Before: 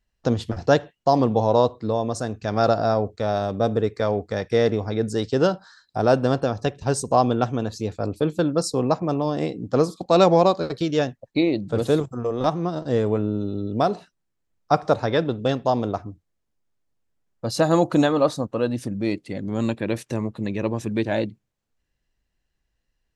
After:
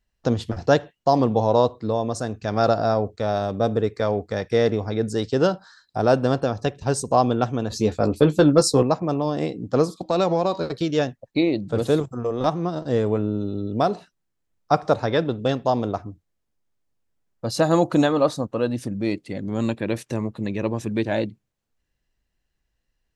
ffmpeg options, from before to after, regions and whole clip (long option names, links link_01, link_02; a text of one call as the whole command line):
ffmpeg -i in.wav -filter_complex "[0:a]asettb=1/sr,asplit=3[link_01][link_02][link_03];[link_01]atrim=end=7.704[link_04];[link_02]atrim=start=7.7:end=8.83,asetpts=PTS-STARTPTS,afade=type=in:duration=0.004:curve=qsin,afade=type=out:start_time=1.126:duration=0.004:curve=qsin,acontrast=47,asplit=2[link_05][link_06];[link_06]adelay=14,volume=-9dB[link_07];[link_05][link_07]amix=inputs=2:normalize=0,atrim=end_sample=49833[link_08];[link_03]atrim=start=8.826[link_09];[link_04][link_08]acrossfade=duration=0.004:curve1=hsin:curve2=qsin[link_10];[link_10][link_09]acrossfade=duration=0.004:curve1=qsin:curve2=hsin,asettb=1/sr,asplit=3[link_11][link_12][link_13];[link_11]atrim=end=9.974[link_14];[link_12]atrim=start=9.97:end=10.68,asetpts=PTS-STARTPTS,afade=type=in:duration=0.004:curve=qsin,afade=type=out:start_time=0.706:duration=0.004:curve=qsin,bandreject=frequency=318.5:width_type=h:width=4,bandreject=frequency=637:width_type=h:width=4,bandreject=frequency=955.5:width_type=h:width=4,bandreject=frequency=1274:width_type=h:width=4,bandreject=frequency=1592.5:width_type=h:width=4,bandreject=frequency=1911:width_type=h:width=4,bandreject=frequency=2229.5:width_type=h:width=4,bandreject=frequency=2548:width_type=h:width=4,bandreject=frequency=2866.5:width_type=h:width=4,bandreject=frequency=3185:width_type=h:width=4,bandreject=frequency=3503.5:width_type=h:width=4,bandreject=frequency=3822:width_type=h:width=4,bandreject=frequency=4140.5:width_type=h:width=4,bandreject=frequency=4459:width_type=h:width=4,bandreject=frequency=4777.5:width_type=h:width=4,bandreject=frequency=5096:width_type=h:width=4,bandreject=frequency=5414.5:width_type=h:width=4,bandreject=frequency=5733:width_type=h:width=4,bandreject=frequency=6051.5:width_type=h:width=4,bandreject=frequency=6370:width_type=h:width=4,acompressor=threshold=-18dB:ratio=2.5:attack=3.2:release=140:knee=1:detection=peak[link_15];[link_13]atrim=start=10.676[link_16];[link_14][link_15]acrossfade=duration=0.004:curve1=hsin:curve2=qsin[link_17];[link_17][link_16]acrossfade=duration=0.004:curve1=qsin:curve2=hsin" out.wav